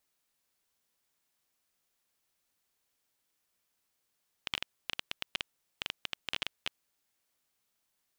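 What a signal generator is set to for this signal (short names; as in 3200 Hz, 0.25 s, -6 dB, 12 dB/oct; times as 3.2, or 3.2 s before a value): random clicks 12/s -15 dBFS 2.30 s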